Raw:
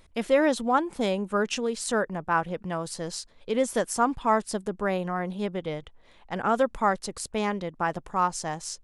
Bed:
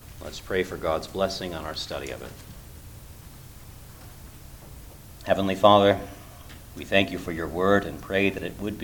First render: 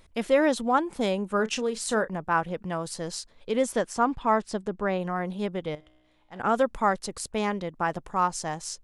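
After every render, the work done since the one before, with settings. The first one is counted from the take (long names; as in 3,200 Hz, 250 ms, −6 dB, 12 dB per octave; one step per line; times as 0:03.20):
0:01.36–0:02.16: double-tracking delay 32 ms −14 dB
0:03.72–0:05.01: high-frequency loss of the air 69 metres
0:05.75–0:06.40: tuned comb filter 62 Hz, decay 1.8 s, mix 80%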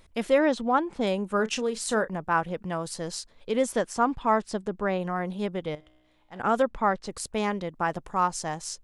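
0:00.38–0:01.07: high-frequency loss of the air 90 metres
0:06.62–0:07.07: high-frequency loss of the air 130 metres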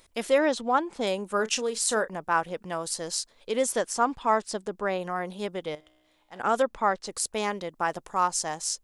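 bass and treble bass −9 dB, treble +7 dB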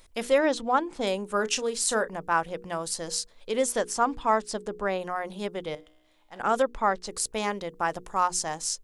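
low-shelf EQ 63 Hz +11.5 dB
mains-hum notches 60/120/180/240/300/360/420/480 Hz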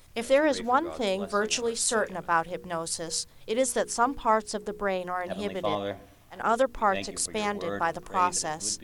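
mix in bed −14 dB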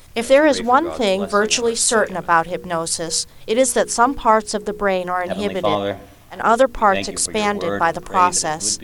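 level +10 dB
brickwall limiter −2 dBFS, peak gain reduction 1.5 dB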